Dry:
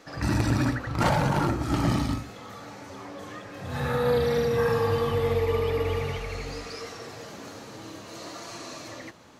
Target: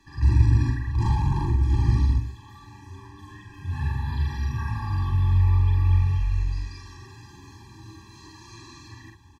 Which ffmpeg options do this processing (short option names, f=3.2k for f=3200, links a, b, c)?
-filter_complex "[0:a]asplit=2[a][b];[b]adelay=44,volume=-4dB[c];[a][c]amix=inputs=2:normalize=0,acrossover=split=190|990|3700[d][e][f][g];[f]alimiter=level_in=2.5dB:limit=-24dB:level=0:latency=1:release=344,volume=-2.5dB[h];[d][e][h][g]amix=inputs=4:normalize=0,acrossover=split=7600[i][j];[j]acompressor=threshold=-59dB:ratio=4:attack=1:release=60[k];[i][k]amix=inputs=2:normalize=0,lowshelf=f=120:t=q:w=1.5:g=13.5,afftfilt=real='re*eq(mod(floor(b*sr/1024/390),2),0)':imag='im*eq(mod(floor(b*sr/1024/390),2),0)':win_size=1024:overlap=0.75,volume=-5dB"